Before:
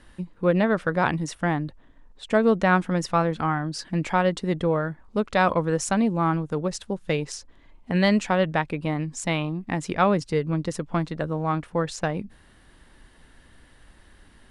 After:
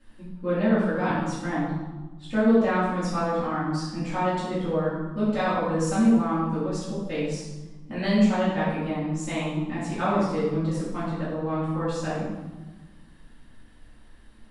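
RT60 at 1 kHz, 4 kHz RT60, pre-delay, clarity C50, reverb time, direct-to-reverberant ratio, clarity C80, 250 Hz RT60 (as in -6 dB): 1.3 s, 0.85 s, 3 ms, 0.0 dB, 1.3 s, -14.0 dB, 2.5 dB, 1.9 s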